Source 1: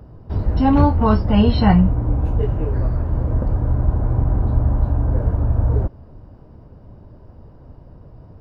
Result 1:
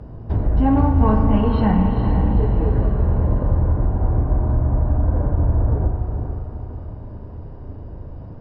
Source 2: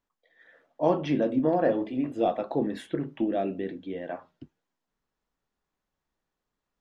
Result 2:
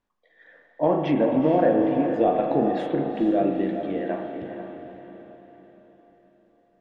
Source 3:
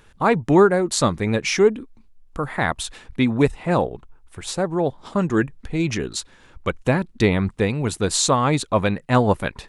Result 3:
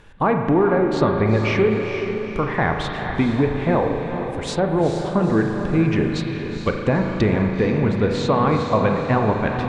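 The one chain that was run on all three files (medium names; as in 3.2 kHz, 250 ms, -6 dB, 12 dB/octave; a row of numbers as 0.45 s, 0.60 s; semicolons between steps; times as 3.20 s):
in parallel at -10.5 dB: hard clipper -15.5 dBFS; on the sum: low-pass 3.5 kHz 6 dB/octave; band-stop 1.3 kHz, Q 17; compression, threshold -17 dBFS; spring tank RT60 1.8 s, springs 37 ms, chirp 20 ms, DRR 4.5 dB; low-pass that closes with the level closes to 2.4 kHz, closed at -18.5 dBFS; on a send: echo that smears into a reverb 456 ms, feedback 47%, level -7 dB; on the sum: trim +2 dB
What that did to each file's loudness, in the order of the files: -1.0 LU, +5.0 LU, +0.5 LU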